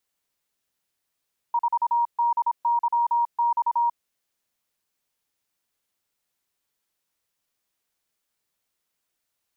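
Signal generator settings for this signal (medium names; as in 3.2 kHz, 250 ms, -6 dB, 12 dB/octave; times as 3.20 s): Morse "4DYX" 26 wpm 945 Hz -18.5 dBFS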